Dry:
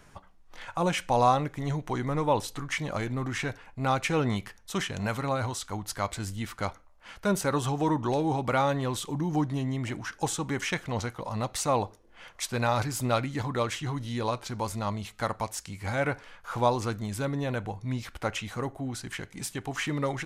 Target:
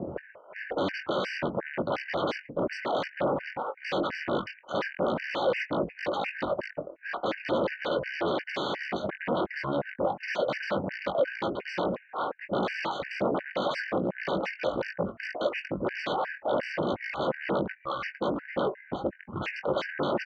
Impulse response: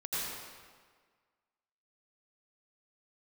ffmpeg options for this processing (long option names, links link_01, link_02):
-filter_complex "[0:a]areverse,acompressor=mode=upward:threshold=-35dB:ratio=2.5,areverse,acrossover=split=1000[link_01][link_02];[link_01]aeval=exprs='val(0)*(1-1/2+1/2*cos(2*PI*1.2*n/s))':channel_layout=same[link_03];[link_02]aeval=exprs='val(0)*(1-1/2-1/2*cos(2*PI*1.2*n/s))':channel_layout=same[link_04];[link_03][link_04]amix=inputs=2:normalize=0,aresample=11025,asoftclip=type=tanh:threshold=-27.5dB,aresample=44100,asetrate=23361,aresample=44100,atempo=1.88775,aeval=exprs='0.0501*sin(PI/2*8.91*val(0)/0.0501)':channel_layout=same,highpass=170,equalizer=frequency=190:width_type=q:width=4:gain=4,equalizer=frequency=340:width_type=q:width=4:gain=5,equalizer=frequency=560:width_type=q:width=4:gain=10,equalizer=frequency=2800:width_type=q:width=4:gain=-4,lowpass=frequency=4000:width=0.5412,lowpass=frequency=4000:width=1.3066,asplit=2[link_05][link_06];[link_06]adelay=21,volume=-9.5dB[link_07];[link_05][link_07]amix=inputs=2:normalize=0,afftfilt=real='re*gt(sin(2*PI*2.8*pts/sr)*(1-2*mod(floor(b*sr/1024/1500),2)),0)':imag='im*gt(sin(2*PI*2.8*pts/sr)*(1-2*mod(floor(b*sr/1024/1500),2)),0)':win_size=1024:overlap=0.75"